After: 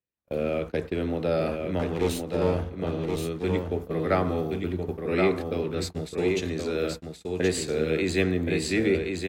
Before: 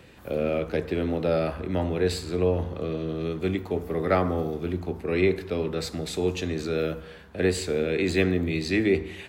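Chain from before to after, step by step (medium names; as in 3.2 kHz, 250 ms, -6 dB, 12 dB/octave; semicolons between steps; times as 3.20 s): 1.79–2.70 s: comb filter that takes the minimum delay 0.31 ms; gate -31 dBFS, range -44 dB; dynamic bell 7.9 kHz, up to +4 dB, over -50 dBFS, Q 1; on a send: delay 1074 ms -4.5 dB; on the sum: trim -1.5 dB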